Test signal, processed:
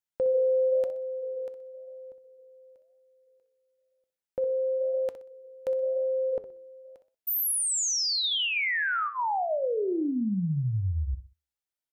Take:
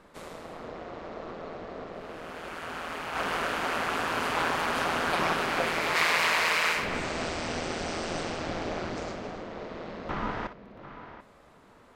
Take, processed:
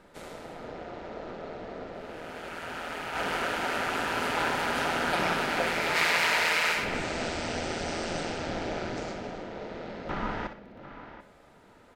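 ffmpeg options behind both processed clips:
ffmpeg -i in.wav -af "asuperstop=centerf=1100:order=4:qfactor=7.3,aecho=1:1:62|124|186:0.251|0.0779|0.0241,flanger=delay=5.3:depth=4.8:regen=-89:speed=0.98:shape=sinusoidal,volume=4.5dB" out.wav

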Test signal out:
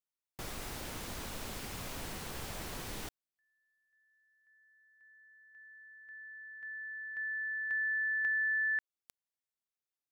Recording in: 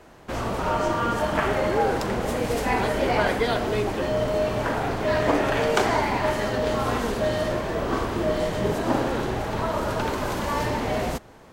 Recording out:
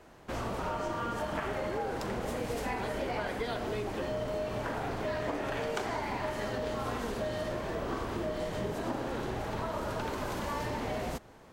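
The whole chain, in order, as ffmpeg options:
ffmpeg -i in.wav -af "acompressor=threshold=-25dB:ratio=5,volume=-6dB" out.wav

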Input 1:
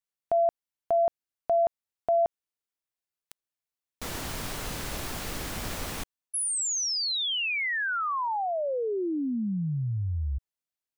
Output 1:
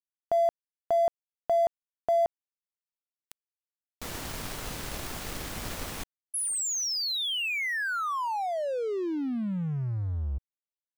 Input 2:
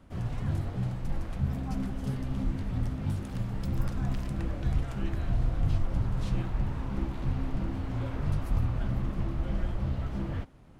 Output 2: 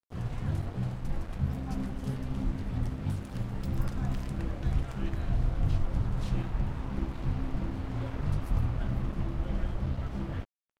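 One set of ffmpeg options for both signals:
ffmpeg -i in.wav -af "aeval=exprs='sgn(val(0))*max(abs(val(0))-0.00562,0)':channel_layout=same" out.wav

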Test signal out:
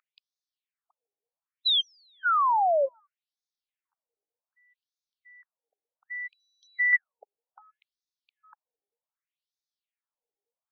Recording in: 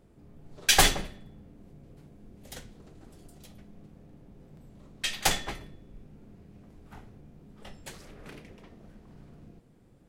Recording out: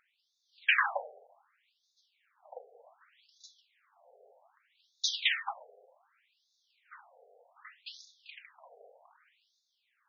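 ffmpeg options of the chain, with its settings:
ffmpeg -i in.wav -af "aeval=exprs='0.562*(cos(1*acos(clip(val(0)/0.562,-1,1)))-cos(1*PI/2))+0.2*(cos(5*acos(clip(val(0)/0.562,-1,1)))-cos(5*PI/2))+0.0112*(cos(8*acos(clip(val(0)/0.562,-1,1)))-cos(8*PI/2))':channel_layout=same,aeval=exprs='val(0)+0.0224*(sin(2*PI*60*n/s)+sin(2*PI*2*60*n/s)/2+sin(2*PI*3*60*n/s)/3+sin(2*PI*4*60*n/s)/4+sin(2*PI*5*60*n/s)/5)':channel_layout=same,afftfilt=real='re*between(b*sr/1024,570*pow(4900/570,0.5+0.5*sin(2*PI*0.65*pts/sr))/1.41,570*pow(4900/570,0.5+0.5*sin(2*PI*0.65*pts/sr))*1.41)':imag='im*between(b*sr/1024,570*pow(4900/570,0.5+0.5*sin(2*PI*0.65*pts/sr))/1.41,570*pow(4900/570,0.5+0.5*sin(2*PI*0.65*pts/sr))*1.41)':win_size=1024:overlap=0.75,volume=-3.5dB" out.wav

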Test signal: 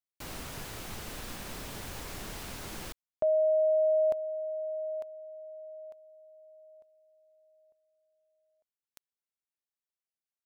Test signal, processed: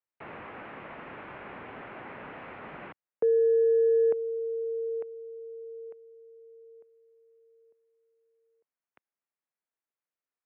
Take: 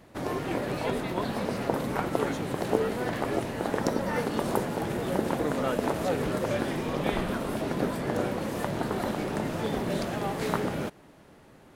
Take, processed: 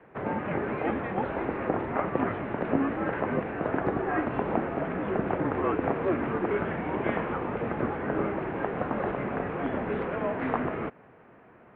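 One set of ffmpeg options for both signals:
ffmpeg -i in.wav -filter_complex "[0:a]highpass=210,asplit=2[link_01][link_02];[link_02]highpass=frequency=720:poles=1,volume=11dB,asoftclip=type=tanh:threshold=-9.5dB[link_03];[link_01][link_03]amix=inputs=2:normalize=0,lowpass=frequency=1700:poles=1,volume=-6dB,highpass=frequency=280:width_type=q:width=0.5412,highpass=frequency=280:width_type=q:width=1.307,lowpass=frequency=2700:width_type=q:width=0.5176,lowpass=frequency=2700:width_type=q:width=0.7071,lowpass=frequency=2700:width_type=q:width=1.932,afreqshift=-170" out.wav

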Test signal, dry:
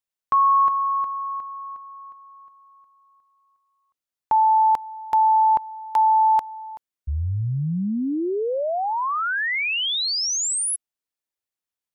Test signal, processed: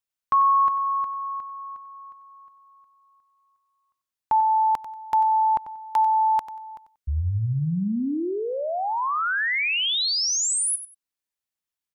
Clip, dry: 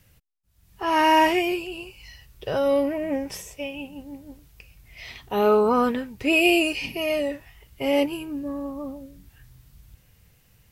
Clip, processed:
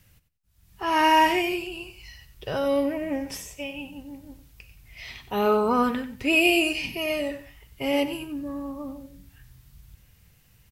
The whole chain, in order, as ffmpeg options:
ffmpeg -i in.wav -filter_complex "[0:a]equalizer=frequency=500:width=0.99:gain=-4,asplit=2[link_01][link_02];[link_02]aecho=0:1:93|186:0.224|0.047[link_03];[link_01][link_03]amix=inputs=2:normalize=0" out.wav

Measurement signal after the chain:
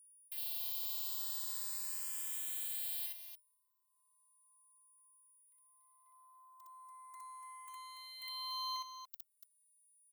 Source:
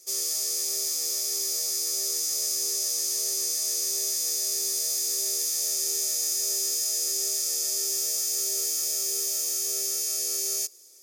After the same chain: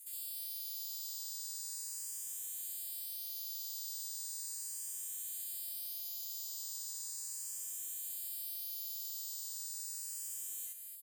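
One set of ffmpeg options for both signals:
ffmpeg -i in.wav -filter_complex "[0:a]lowshelf=frequency=490:gain=-9.5,afftfilt=real='hypot(re,im)*cos(PI*b)':imag='0':win_size=512:overlap=0.75,alimiter=limit=-17.5dB:level=0:latency=1,aexciter=amount=3.5:drive=4.9:freq=7100,aeval=exprs='val(0)+0.00178*sin(2*PI*9700*n/s)':channel_layout=same,acrossover=split=4600[link_01][link_02];[link_02]acompressor=threshold=-35dB:ratio=4:attack=1:release=60[link_03];[link_01][link_03]amix=inputs=2:normalize=0,aeval=exprs='0.15*(cos(1*acos(clip(val(0)/0.15,-1,1)))-cos(1*PI/2))+0.0119*(cos(3*acos(clip(val(0)/0.15,-1,1)))-cos(3*PI/2))+0.015*(cos(6*acos(clip(val(0)/0.15,-1,1)))-cos(6*PI/2))':channel_layout=same,highpass=230,aderivative,asplit=2[link_04][link_05];[link_05]aecho=0:1:61.22|288.6:1|0.447[link_06];[link_04][link_06]amix=inputs=2:normalize=0,asplit=2[link_07][link_08];[link_08]afreqshift=0.37[link_09];[link_07][link_09]amix=inputs=2:normalize=1,volume=-4.5dB" out.wav

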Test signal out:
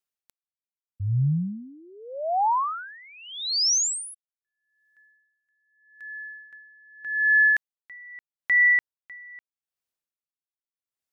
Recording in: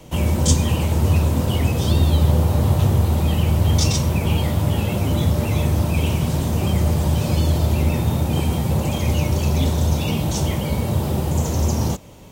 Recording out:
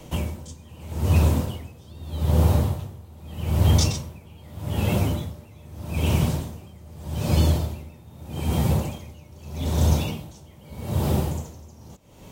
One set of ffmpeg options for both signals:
ffmpeg -i in.wav -af "aeval=exprs='val(0)*pow(10,-27*(0.5-0.5*cos(2*PI*0.81*n/s))/20)':channel_layout=same" out.wav

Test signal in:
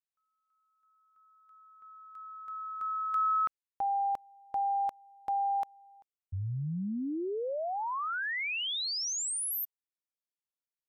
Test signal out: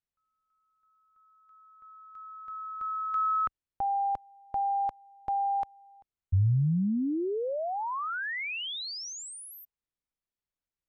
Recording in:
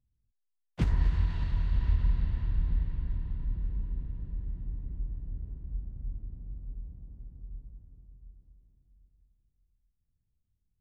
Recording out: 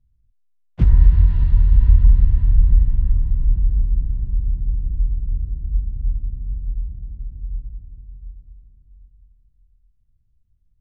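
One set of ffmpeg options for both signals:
ffmpeg -i in.wav -af "acontrast=55,aemphasis=mode=reproduction:type=bsi,volume=-5dB" out.wav

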